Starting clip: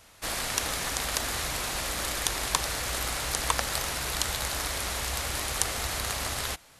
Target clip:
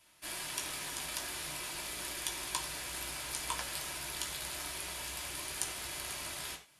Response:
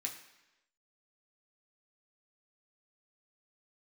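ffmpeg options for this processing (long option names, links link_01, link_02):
-filter_complex "[1:a]atrim=start_sample=2205,atrim=end_sample=6615,asetrate=57330,aresample=44100[link_01];[0:a][link_01]afir=irnorm=-1:irlink=0,volume=-6dB"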